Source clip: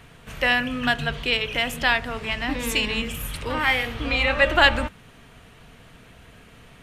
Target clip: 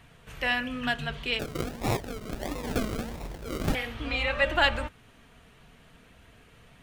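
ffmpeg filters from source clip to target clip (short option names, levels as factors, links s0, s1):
-filter_complex "[0:a]flanger=delay=1:depth=4.5:regen=-66:speed=0.44:shape=triangular,asettb=1/sr,asplit=3[s0][s1][s2];[s0]atrim=end=1.394[s3];[s1]atrim=start=1.39:end=3.75,asetpts=PTS-STARTPTS,afade=t=in:d=0.004:c=qsin,afade=t=out:st=2.356:d=0.004:c=qsin,acrusher=samples=40:mix=1:aa=0.000001:lfo=1:lforange=24:lforate=1.5[s4];[s2]atrim=start=3.746[s5];[s3][s4]acrossfade=d=0.004:c1=hsin:c2=qsin[s6];[s6][s5]acrossfade=d=0.004:c1=qsin:c2=hsin,volume=0.75"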